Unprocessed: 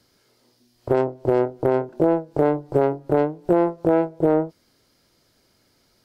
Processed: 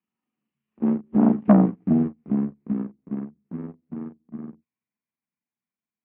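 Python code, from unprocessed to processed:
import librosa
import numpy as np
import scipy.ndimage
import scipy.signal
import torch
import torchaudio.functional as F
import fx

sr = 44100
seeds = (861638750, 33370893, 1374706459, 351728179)

y = fx.pitch_heads(x, sr, semitones=-11.0)
y = fx.doppler_pass(y, sr, speed_mps=34, closest_m=4.1, pass_at_s=1.49)
y = fx.leveller(y, sr, passes=2)
y = fx.cabinet(y, sr, low_hz=110.0, low_slope=24, high_hz=2400.0, hz=(130.0, 220.0, 600.0, 1100.0), db=(-7, 9, -4, 4))
y = fx.transformer_sat(y, sr, knee_hz=490.0)
y = y * 10.0 ** (1.5 / 20.0)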